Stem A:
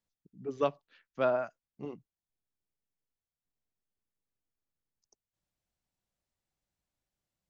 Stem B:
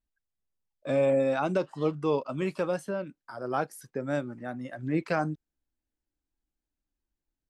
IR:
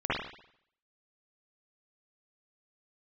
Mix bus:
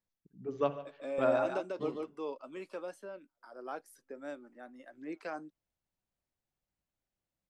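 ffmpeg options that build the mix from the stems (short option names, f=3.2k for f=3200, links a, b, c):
-filter_complex "[0:a]highshelf=f=3.2k:g=-7.5,volume=-2dB,asplit=4[a][b][c][d];[b]volume=-22dB[e];[c]volume=-15dB[f];[1:a]highpass=f=260:w=0.5412,highpass=f=260:w=1.3066,volume=-8dB,asplit=2[g][h];[h]volume=-4dB[i];[d]apad=whole_len=330572[j];[g][j]sidechaingate=range=-43dB:threshold=-55dB:ratio=16:detection=peak[k];[2:a]atrim=start_sample=2205[l];[e][l]afir=irnorm=-1:irlink=0[m];[f][i]amix=inputs=2:normalize=0,aecho=0:1:145:1[n];[a][k][m][n]amix=inputs=4:normalize=0"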